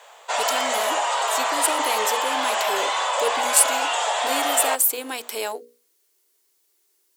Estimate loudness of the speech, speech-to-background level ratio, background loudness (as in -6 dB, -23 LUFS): -24.5 LUFS, -1.5 dB, -23.0 LUFS